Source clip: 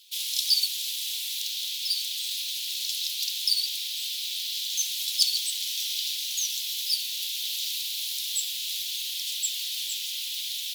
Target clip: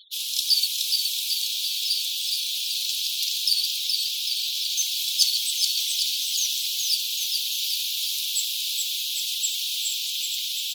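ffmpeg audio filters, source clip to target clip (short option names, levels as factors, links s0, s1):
-af "aecho=1:1:420|798|1138|1444|1720:0.631|0.398|0.251|0.158|0.1,acompressor=mode=upward:threshold=0.0112:ratio=2.5,afftfilt=real='re*gte(hypot(re,im),0.0126)':imag='im*gte(hypot(re,im),0.0126)':win_size=1024:overlap=0.75,volume=1.26"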